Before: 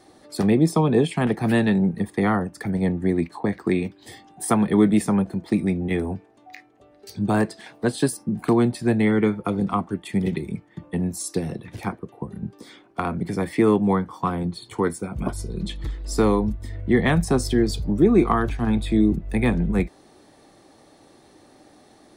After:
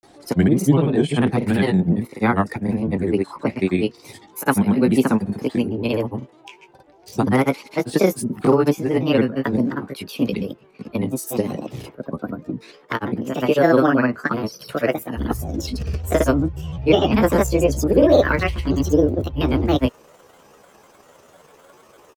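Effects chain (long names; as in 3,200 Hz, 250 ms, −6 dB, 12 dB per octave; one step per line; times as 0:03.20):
pitch glide at a constant tempo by +8.5 semitones starting unshifted
granular cloud, grains 20 per second, pitch spread up and down by 3 semitones
level +5 dB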